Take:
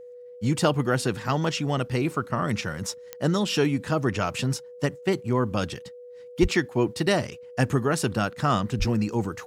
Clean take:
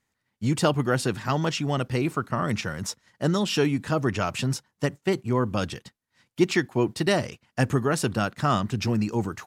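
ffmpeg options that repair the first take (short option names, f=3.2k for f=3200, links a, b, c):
-filter_complex "[0:a]adeclick=t=4,bandreject=f=490:w=30,asplit=3[a][b][c];[a]afade=t=out:st=6.41:d=0.02[d];[b]highpass=f=140:w=0.5412,highpass=f=140:w=1.3066,afade=t=in:st=6.41:d=0.02,afade=t=out:st=6.53:d=0.02[e];[c]afade=t=in:st=6.53:d=0.02[f];[d][e][f]amix=inputs=3:normalize=0,asplit=3[g][h][i];[g]afade=t=out:st=8.78:d=0.02[j];[h]highpass=f=140:w=0.5412,highpass=f=140:w=1.3066,afade=t=in:st=8.78:d=0.02,afade=t=out:st=8.9:d=0.02[k];[i]afade=t=in:st=8.9:d=0.02[l];[j][k][l]amix=inputs=3:normalize=0"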